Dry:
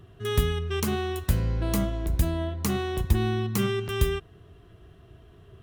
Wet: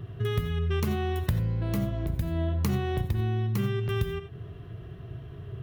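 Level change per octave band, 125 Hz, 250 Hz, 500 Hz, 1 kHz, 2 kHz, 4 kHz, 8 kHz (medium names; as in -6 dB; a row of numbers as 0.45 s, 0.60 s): +1.0 dB, -2.5 dB, -3.5 dB, -3.0 dB, -4.0 dB, -6.0 dB, -11.0 dB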